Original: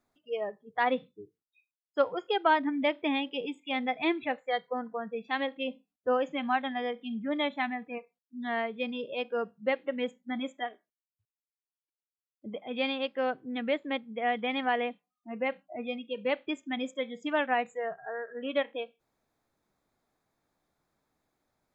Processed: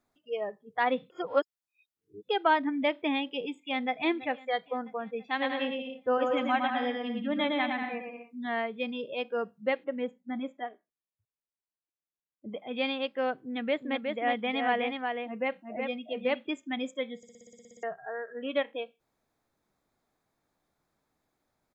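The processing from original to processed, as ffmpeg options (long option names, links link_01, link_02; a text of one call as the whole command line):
ffmpeg -i in.wav -filter_complex "[0:a]asplit=2[link_01][link_02];[link_02]afade=type=in:start_time=3.58:duration=0.01,afade=type=out:start_time=4.02:duration=0.01,aecho=0:1:330|660|990|1320|1650|1980|2310:0.133352|0.0866789|0.0563413|0.0366218|0.0238042|0.0154727|0.0100573[link_03];[link_01][link_03]amix=inputs=2:normalize=0,asettb=1/sr,asplit=3[link_04][link_05][link_06];[link_04]atrim=end=5.234[link_07];[link_05]atrim=start=5.23:end=8.46,asetpts=PTS-STARTPTS,afade=type=in:duration=0.004:curve=qsin,afade=type=out:start_time=3.226:duration=0.004:curve=qsin,aecho=1:1:110|187|240.9|278.6|305:0.631|0.398|0.251|0.158|0.1,atrim=end_sample=142443[link_08];[link_06]atrim=start=8.456[link_09];[link_07][link_08]acrossfade=duration=0.004:curve1=hsin:curve2=qsin[link_10];[link_10][link_09]acrossfade=duration=0.004:curve1=qsin:curve2=hsin,asettb=1/sr,asplit=3[link_11][link_12][link_13];[link_11]atrim=end=9.844[link_14];[link_12]atrim=start=9.84:end=12.49,asetpts=PTS-STARTPTS,afade=type=in:duration=0.004:curve=qsin,afade=type=out:start_time=2.646:duration=0.004:curve=qsin,lowpass=frequency=1200:poles=1[link_15];[link_13]atrim=start=12.486[link_16];[link_14][link_15]acrossfade=duration=0.004:curve1=hsin:curve2=qsin[link_17];[link_17][link_16]acrossfade=duration=0.004:curve1=qsin:curve2=hsin,asplit=3[link_18][link_19][link_20];[link_18]afade=type=out:start_time=13.74:duration=0.02[link_21];[link_19]aecho=1:1:366:0.596,afade=type=in:start_time=13.74:duration=0.02,afade=type=out:start_time=16.45:duration=0.02[link_22];[link_20]afade=type=in:start_time=16.45:duration=0.02[link_23];[link_21][link_22][link_23]amix=inputs=3:normalize=0,asplit=14[link_24][link_25][link_26][link_27][link_28][link_29][link_30][link_31][link_32][link_33][link_34][link_35][link_36][link_37];[link_24]atrim=end=1.102[link_38];[link_25]atrim=start=1.098:end=2.292,asetpts=PTS-STARTPTS,areverse[link_39];[link_26]atrim=start=2.288:end=17.232[link_40];[link_27]atrim=start=17.168:end=17.232[link_41];[link_28]atrim=start=17.168:end=17.232[link_42];[link_29]atrim=start=17.168:end=17.232[link_43];[link_30]atrim=start=17.168:end=17.232[link_44];[link_31]atrim=start=17.168:end=17.232[link_45];[link_32]atrim=start=17.168:end=17.232[link_46];[link_33]atrim=start=17.168:end=17.232[link_47];[link_34]atrim=start=17.168:end=17.232[link_48];[link_35]atrim=start=17.168:end=17.232[link_49];[link_36]atrim=start=17.168:end=17.232[link_50];[link_37]atrim=start=17.828[link_51];[link_38][link_39]acrossfade=duration=0.004:curve1=hsin:curve2=hsin[link_52];[link_52][link_40]acrossfade=duration=0.004:curve1=hsin:curve2=hsin[link_53];[link_53][link_41]acrossfade=duration=0.004:curve1=hsin:curve2=hsin[link_54];[link_54][link_42]acrossfade=duration=0.004:curve1=hsin:curve2=hsin[link_55];[link_55][link_43]acrossfade=duration=0.004:curve1=hsin:curve2=hsin[link_56];[link_56][link_44]acrossfade=duration=0.004:curve1=hsin:curve2=hsin[link_57];[link_57][link_45]acrossfade=duration=0.004:curve1=hsin:curve2=hsin[link_58];[link_58][link_46]acrossfade=duration=0.004:curve1=hsin:curve2=hsin[link_59];[link_59][link_47]acrossfade=duration=0.004:curve1=hsin:curve2=hsin[link_60];[link_60][link_48]acrossfade=duration=0.004:curve1=hsin:curve2=hsin[link_61];[link_61][link_49]acrossfade=duration=0.004:curve1=hsin:curve2=hsin[link_62];[link_62][link_50]acrossfade=duration=0.004:curve1=hsin:curve2=hsin[link_63];[link_63][link_51]acrossfade=duration=0.004:curve1=hsin:curve2=hsin" out.wav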